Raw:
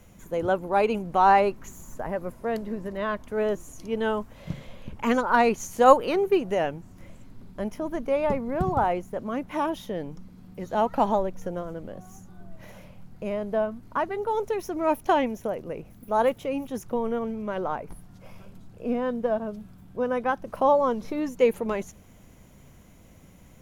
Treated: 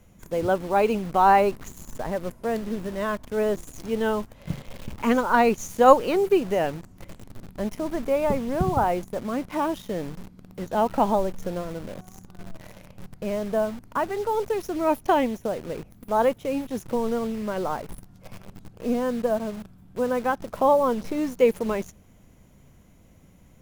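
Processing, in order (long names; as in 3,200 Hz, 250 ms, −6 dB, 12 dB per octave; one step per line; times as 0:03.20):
low-shelf EQ 470 Hz +3 dB
in parallel at −3 dB: bit-depth reduction 6 bits, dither none
on the sum: level −4.5 dB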